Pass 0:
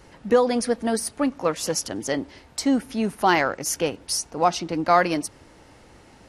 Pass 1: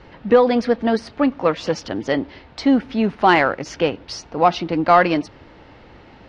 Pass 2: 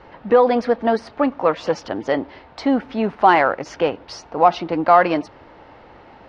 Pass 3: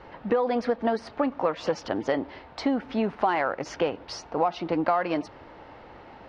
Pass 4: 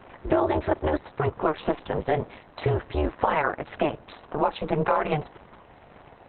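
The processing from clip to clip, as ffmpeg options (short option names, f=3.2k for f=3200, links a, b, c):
-filter_complex "[0:a]lowpass=f=4k:w=0.5412,lowpass=f=4k:w=1.3066,asplit=2[a][b];[b]acontrast=51,volume=1.5dB[c];[a][c]amix=inputs=2:normalize=0,volume=-5dB"
-filter_complex "[0:a]asplit=2[a][b];[b]alimiter=limit=-9.5dB:level=0:latency=1,volume=0dB[c];[a][c]amix=inputs=2:normalize=0,equalizer=f=840:t=o:w=2.3:g=10,volume=-11.5dB"
-af "acompressor=threshold=-19dB:ratio=6,volume=-2dB"
-af "aeval=exprs='val(0)*sin(2*PI*150*n/s)':c=same,volume=5dB" -ar 48000 -c:a libopus -b:a 6k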